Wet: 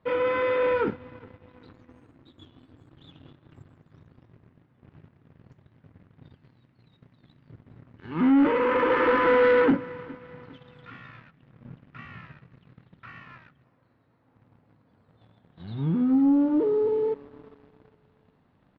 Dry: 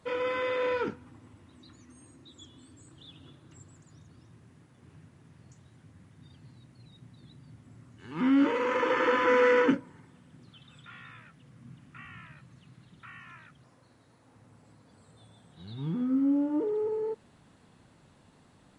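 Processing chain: 6.36–7.5 tilt +1.5 dB/oct; feedback echo 0.409 s, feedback 51%, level -23 dB; sample leveller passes 2; air absorption 350 m

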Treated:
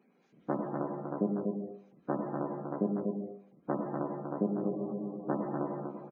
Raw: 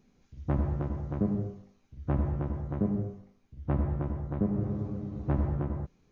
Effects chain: Chebyshev high-pass 170 Hz, order 4; tone controls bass -9 dB, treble -7 dB; spectral gate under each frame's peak -25 dB strong; on a send: echo 0.243 s -4.5 dB; on the sum: gain +3.5 dB

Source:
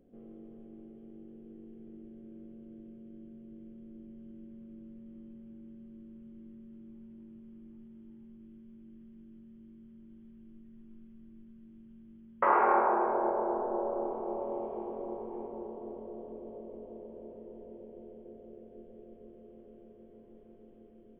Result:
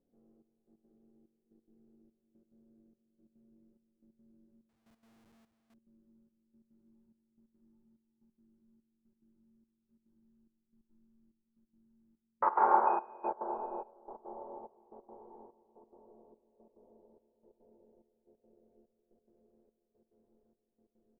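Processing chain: 12.86–13.27 whine 2500 Hz -40 dBFS; resonant high shelf 1800 Hz -7.5 dB, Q 1.5; flange 1.3 Hz, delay 9.6 ms, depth 4.7 ms, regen -63%; bell 870 Hz +9 dB 0.21 oct; echo 0.624 s -21.5 dB; 4.69–5.74 Schmitt trigger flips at -59 dBFS; step gate "xxxxx...x." 179 bpm -12 dB; upward expander 1.5:1, over -47 dBFS

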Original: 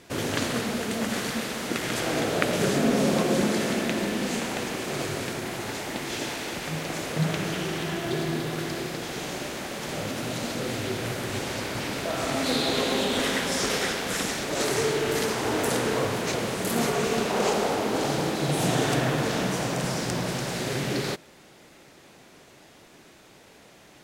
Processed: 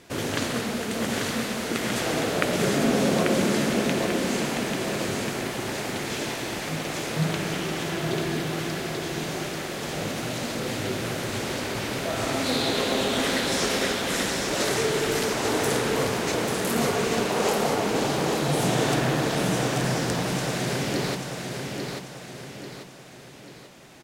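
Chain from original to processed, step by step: feedback echo 0.84 s, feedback 44%, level -5 dB

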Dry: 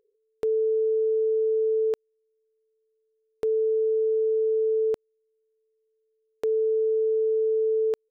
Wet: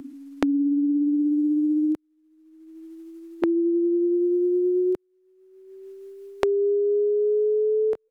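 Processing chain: gliding pitch shift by -8 st ending unshifted; three-band squash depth 100%; gain +2.5 dB

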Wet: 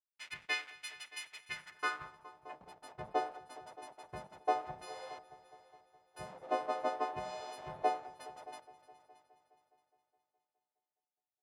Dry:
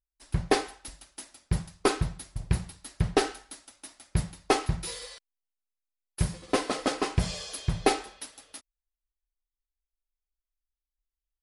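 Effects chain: frequency quantiser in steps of 3 st; compressor 3:1, threshold -38 dBFS, peak gain reduction 16.5 dB; 2.11–2.61 brick-wall FIR band-pass 530–3800 Hz; backlash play -38.5 dBFS; multi-head echo 0.208 s, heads all three, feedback 42%, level -21 dB; band-pass sweep 2300 Hz -> 710 Hz, 1.48–2.54; gain +10 dB

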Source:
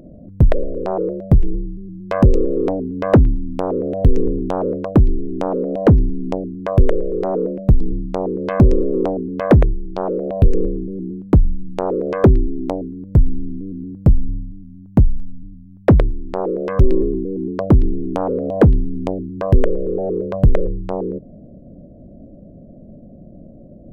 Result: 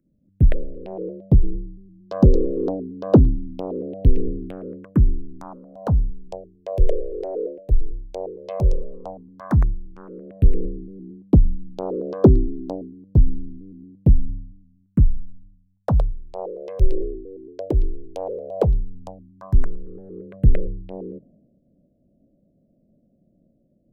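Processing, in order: phaser stages 4, 0.1 Hz, lowest notch 200–2200 Hz; three-band expander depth 70%; gain -6.5 dB

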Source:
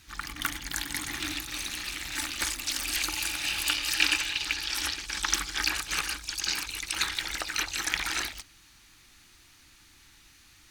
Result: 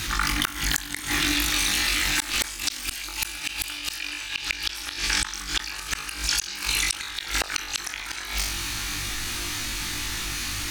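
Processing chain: flutter echo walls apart 3.5 m, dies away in 0.32 s; flipped gate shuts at -17 dBFS, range -41 dB; fast leveller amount 70%; gain +6.5 dB

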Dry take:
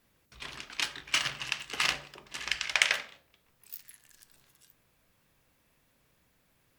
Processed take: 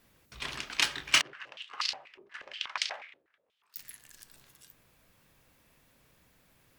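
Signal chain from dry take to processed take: 1.21–3.76 stepped band-pass 8.3 Hz 380–4600 Hz; gain +4.5 dB

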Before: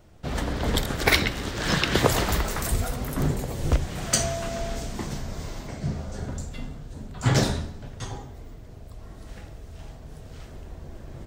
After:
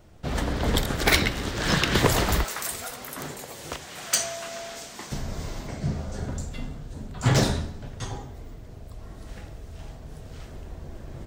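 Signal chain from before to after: one-sided fold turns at -14.5 dBFS; 2.44–5.12 HPF 1100 Hz 6 dB/oct; gain +1 dB

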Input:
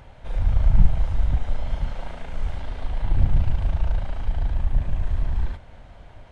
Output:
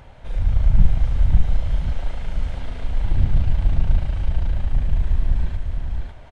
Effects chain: dynamic EQ 870 Hz, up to -5 dB, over -50 dBFS, Q 0.82; on a send: echo 0.55 s -3.5 dB; on the sum: gain +1.5 dB

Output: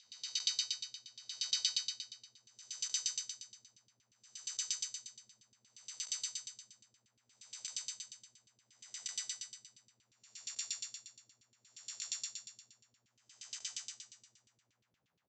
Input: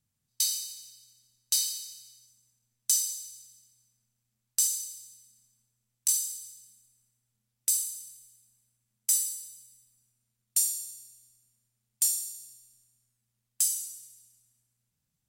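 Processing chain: time blur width 0.382 s; downsampling 16000 Hz; LFO band-pass saw down 8.5 Hz 260–3400 Hz; gain +18 dB

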